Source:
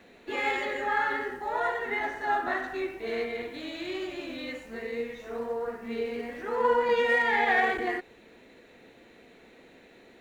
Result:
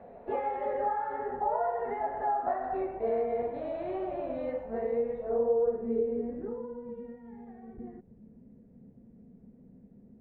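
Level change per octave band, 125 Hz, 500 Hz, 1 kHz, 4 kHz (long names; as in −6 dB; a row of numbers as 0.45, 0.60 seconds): +2.5 dB, 0.0 dB, −3.0 dB, below −25 dB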